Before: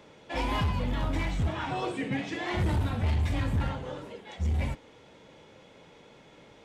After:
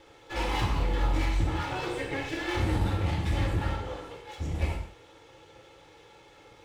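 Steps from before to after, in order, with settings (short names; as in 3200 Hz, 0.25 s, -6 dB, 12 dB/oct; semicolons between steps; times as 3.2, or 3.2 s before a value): minimum comb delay 2.3 ms; non-linear reverb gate 0.22 s falling, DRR -0.5 dB; gain -1.5 dB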